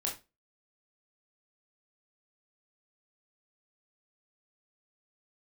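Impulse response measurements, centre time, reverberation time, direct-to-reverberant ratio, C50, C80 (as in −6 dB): 23 ms, 0.25 s, −2.0 dB, 9.0 dB, 16.5 dB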